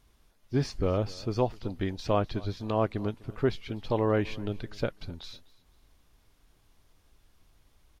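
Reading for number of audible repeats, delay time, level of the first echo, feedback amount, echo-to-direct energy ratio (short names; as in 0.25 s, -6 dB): 2, 0.252 s, -22.0 dB, 26%, -21.5 dB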